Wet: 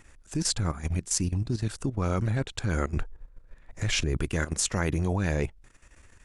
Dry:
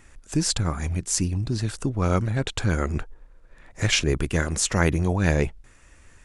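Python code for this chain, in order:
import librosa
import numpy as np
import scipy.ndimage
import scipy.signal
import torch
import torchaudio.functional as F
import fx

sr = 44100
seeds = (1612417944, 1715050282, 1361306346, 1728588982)

y = fx.low_shelf(x, sr, hz=150.0, db=7.5, at=(2.96, 4.17))
y = fx.level_steps(y, sr, step_db=13)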